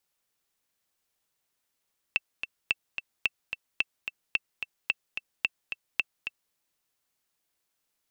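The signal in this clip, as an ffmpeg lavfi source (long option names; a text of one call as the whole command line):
ffmpeg -f lavfi -i "aevalsrc='pow(10,(-10.5-8.5*gte(mod(t,2*60/219),60/219))/20)*sin(2*PI*2670*mod(t,60/219))*exp(-6.91*mod(t,60/219)/0.03)':duration=4.38:sample_rate=44100" out.wav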